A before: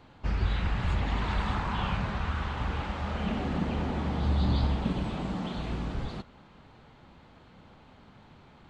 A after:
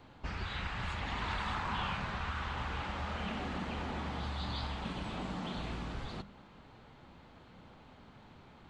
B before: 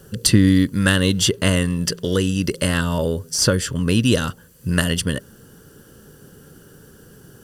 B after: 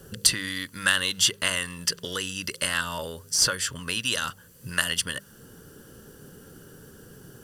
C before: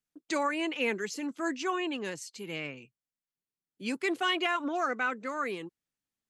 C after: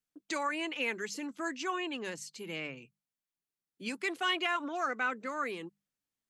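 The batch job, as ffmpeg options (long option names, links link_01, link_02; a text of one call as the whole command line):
ffmpeg -i in.wav -filter_complex "[0:a]bandreject=frequency=50:width_type=h:width=6,bandreject=frequency=100:width_type=h:width=6,bandreject=frequency=150:width_type=h:width=6,bandreject=frequency=200:width_type=h:width=6,acrossover=split=810|4300[link_01][link_02][link_03];[link_01]acompressor=threshold=-35dB:ratio=12[link_04];[link_04][link_02][link_03]amix=inputs=3:normalize=0,volume=-1.5dB" out.wav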